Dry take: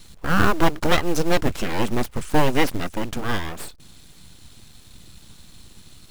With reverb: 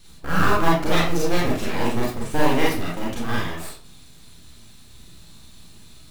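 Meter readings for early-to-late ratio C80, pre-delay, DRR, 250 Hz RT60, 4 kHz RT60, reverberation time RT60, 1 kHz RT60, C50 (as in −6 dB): 7.0 dB, 30 ms, −6.0 dB, 0.45 s, 0.35 s, 0.45 s, 0.45 s, 1.0 dB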